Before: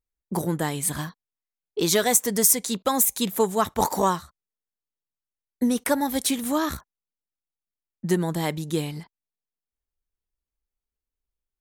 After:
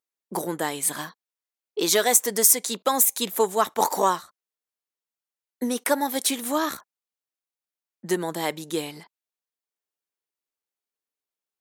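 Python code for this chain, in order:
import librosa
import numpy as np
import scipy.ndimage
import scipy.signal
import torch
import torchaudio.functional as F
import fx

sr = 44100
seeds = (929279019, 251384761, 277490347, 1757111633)

y = scipy.signal.sosfilt(scipy.signal.butter(2, 340.0, 'highpass', fs=sr, output='sos'), x)
y = y * librosa.db_to_amplitude(1.5)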